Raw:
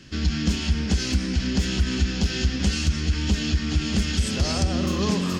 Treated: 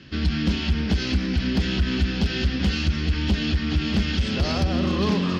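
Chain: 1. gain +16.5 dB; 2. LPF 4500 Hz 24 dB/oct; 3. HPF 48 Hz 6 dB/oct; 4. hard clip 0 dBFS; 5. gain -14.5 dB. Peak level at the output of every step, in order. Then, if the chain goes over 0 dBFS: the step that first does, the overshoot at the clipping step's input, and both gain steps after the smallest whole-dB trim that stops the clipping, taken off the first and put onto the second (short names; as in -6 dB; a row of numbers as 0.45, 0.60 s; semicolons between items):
+7.5, +7.0, +6.0, 0.0, -14.5 dBFS; step 1, 6.0 dB; step 1 +10.5 dB, step 5 -8.5 dB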